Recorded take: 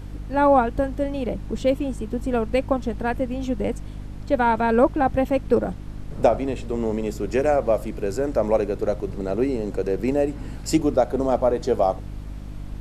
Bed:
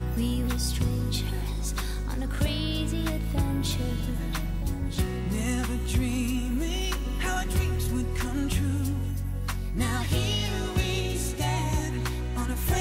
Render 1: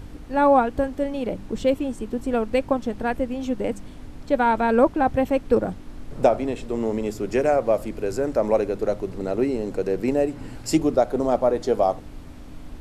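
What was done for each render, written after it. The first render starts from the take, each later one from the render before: de-hum 50 Hz, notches 4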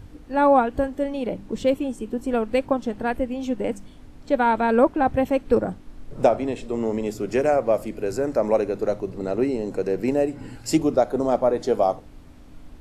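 noise print and reduce 6 dB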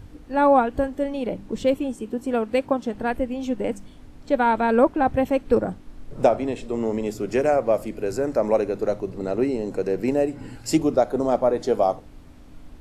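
1.95–2.95 s: high-pass 89 Hz 6 dB/octave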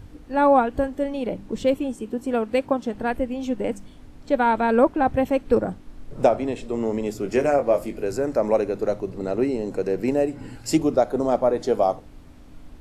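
7.23–8.04 s: doubling 21 ms -7 dB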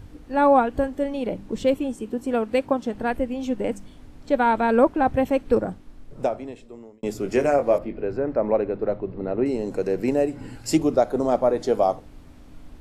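5.41–7.03 s: fade out; 7.78–9.46 s: distance through air 370 m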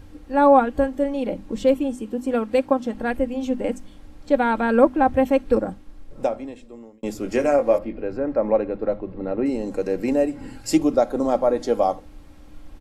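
hum notches 50/100/150/200/250 Hz; comb 3.7 ms, depth 44%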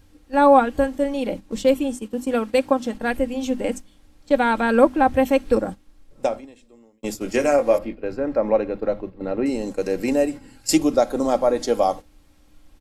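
gate -30 dBFS, range -10 dB; treble shelf 2.5 kHz +9.5 dB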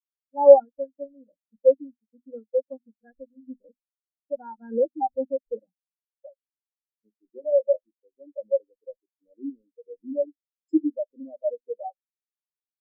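waveshaping leveller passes 2; spectral contrast expander 4:1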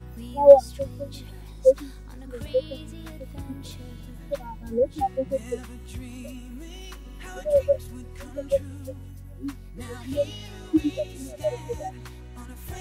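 add bed -11.5 dB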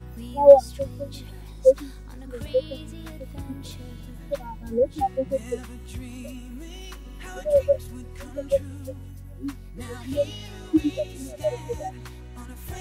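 trim +1 dB; peak limiter -2 dBFS, peak gain reduction 1.5 dB

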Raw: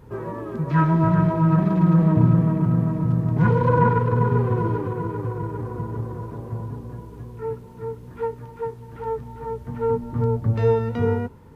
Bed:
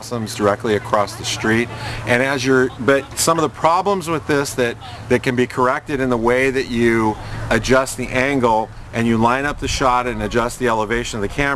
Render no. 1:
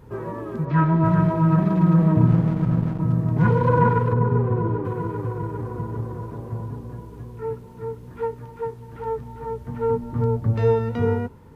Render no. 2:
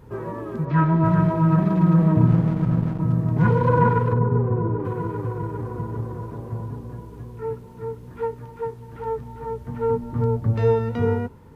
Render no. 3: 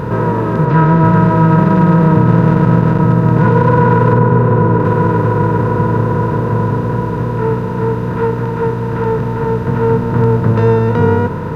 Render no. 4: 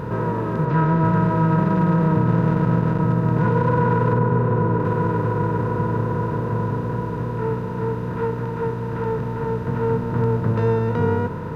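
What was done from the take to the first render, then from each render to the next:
0.65–1.05 s: distance through air 140 m; 2.27–3.00 s: hysteresis with a dead band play -20.5 dBFS; 4.13–4.85 s: treble shelf 2 kHz -11 dB
4.18–4.80 s: treble shelf 2.3 kHz -12 dB
spectral levelling over time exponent 0.4; loudness maximiser +5 dB
trim -8.5 dB

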